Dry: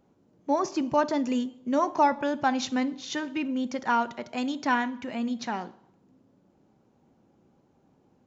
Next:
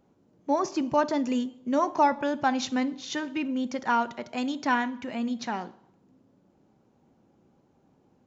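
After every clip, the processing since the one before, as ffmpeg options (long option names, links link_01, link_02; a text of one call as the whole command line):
ffmpeg -i in.wav -af anull out.wav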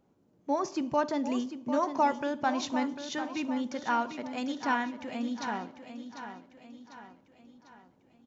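ffmpeg -i in.wav -af "aecho=1:1:747|1494|2241|2988|3735:0.316|0.149|0.0699|0.0328|0.0154,volume=-4dB" out.wav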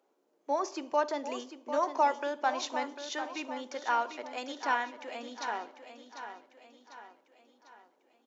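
ffmpeg -i in.wav -af "highpass=frequency=370:width=0.5412,highpass=frequency=370:width=1.3066" out.wav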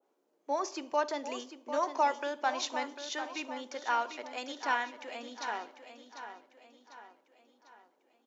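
ffmpeg -i in.wav -af "adynamicequalizer=threshold=0.01:dfrequency=1600:dqfactor=0.7:tfrequency=1600:tqfactor=0.7:attack=5:release=100:ratio=0.375:range=2:mode=boostabove:tftype=highshelf,volume=-2dB" out.wav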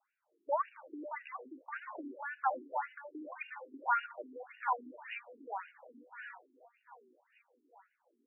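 ffmpeg -i in.wav -af "equalizer=frequency=470:width=0.31:gain=-7,afftfilt=real='re*between(b*sr/1024,290*pow(2100/290,0.5+0.5*sin(2*PI*1.8*pts/sr))/1.41,290*pow(2100/290,0.5+0.5*sin(2*PI*1.8*pts/sr))*1.41)':imag='im*between(b*sr/1024,290*pow(2100/290,0.5+0.5*sin(2*PI*1.8*pts/sr))/1.41,290*pow(2100/290,0.5+0.5*sin(2*PI*1.8*pts/sr))*1.41)':win_size=1024:overlap=0.75,volume=7.5dB" out.wav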